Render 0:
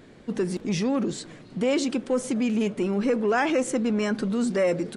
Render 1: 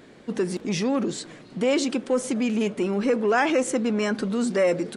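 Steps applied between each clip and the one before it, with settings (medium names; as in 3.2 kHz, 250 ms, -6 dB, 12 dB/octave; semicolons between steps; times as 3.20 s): bass shelf 120 Hz -11.5 dB; trim +2.5 dB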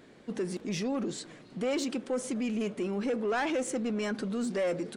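saturation -18 dBFS, distortion -17 dB; trim -6 dB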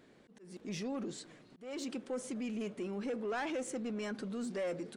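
slow attack 306 ms; trim -7 dB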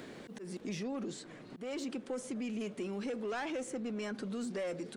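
three bands compressed up and down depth 70%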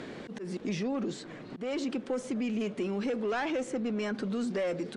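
distance through air 69 m; trim +6.5 dB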